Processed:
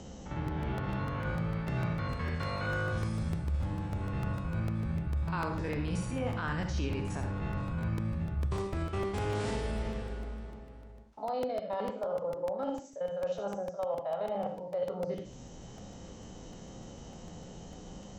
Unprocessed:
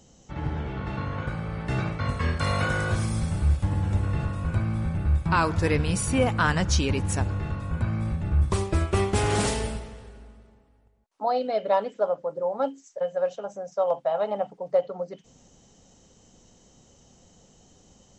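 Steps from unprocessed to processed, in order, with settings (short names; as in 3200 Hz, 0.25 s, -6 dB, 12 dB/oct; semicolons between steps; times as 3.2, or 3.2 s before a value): stepped spectrum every 50 ms; reverse; compressor, threshold -36 dBFS, peak gain reduction 17 dB; reverse; air absorption 71 m; on a send at -5 dB: reverb RT60 0.35 s, pre-delay 50 ms; on the sum: crackling interface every 0.15 s, samples 64, repeat, from 0.48; three-band squash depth 40%; gain +3.5 dB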